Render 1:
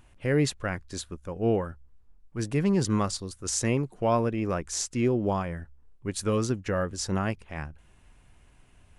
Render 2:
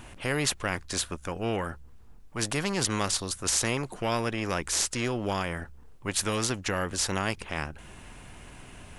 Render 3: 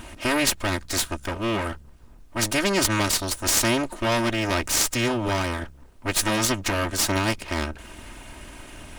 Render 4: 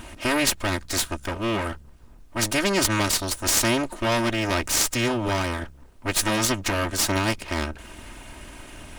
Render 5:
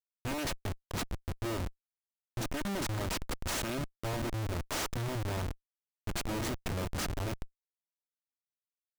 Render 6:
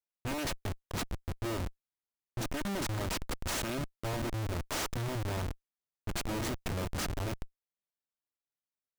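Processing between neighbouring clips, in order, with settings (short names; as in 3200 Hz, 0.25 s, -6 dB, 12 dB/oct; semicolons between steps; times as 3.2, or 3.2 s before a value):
spectral compressor 2:1; gain +4 dB
minimum comb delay 3.2 ms; gain +7 dB
nothing audible
Schmitt trigger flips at -21 dBFS; gain -8 dB
mismatched tape noise reduction decoder only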